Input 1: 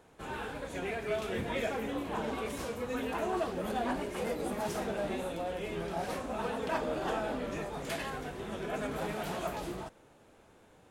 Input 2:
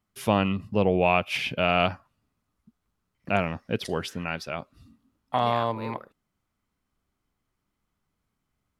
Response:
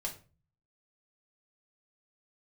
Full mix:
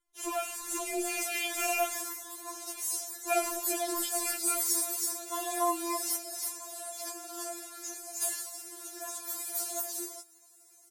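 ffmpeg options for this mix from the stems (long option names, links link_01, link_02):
-filter_complex "[0:a]highpass=460,highshelf=frequency=9400:gain=4,aexciter=amount=9.7:drive=6.9:freq=4600,volume=-2.5dB,asplit=2[link_01][link_02];[link_02]volume=-3dB[link_03];[1:a]equalizer=frequency=62:width_type=o:width=0.58:gain=12.5,alimiter=limit=-14dB:level=0:latency=1:release=220,volume=-3.5dB,asplit=2[link_04][link_05];[link_05]apad=whole_len=481013[link_06];[link_01][link_06]sidechaingate=range=-33dB:threshold=-58dB:ratio=16:detection=peak[link_07];[link_03]aecho=0:1:327:1[link_08];[link_07][link_04][link_08]amix=inputs=3:normalize=0,equalizer=frequency=78:width_type=o:width=1.6:gain=14.5,afftfilt=real='re*4*eq(mod(b,16),0)':imag='im*4*eq(mod(b,16),0)':win_size=2048:overlap=0.75"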